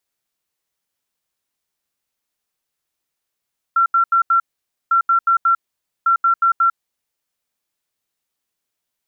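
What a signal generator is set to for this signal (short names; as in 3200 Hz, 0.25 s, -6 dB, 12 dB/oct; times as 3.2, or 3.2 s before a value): beep pattern sine 1360 Hz, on 0.10 s, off 0.08 s, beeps 4, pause 0.51 s, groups 3, -11 dBFS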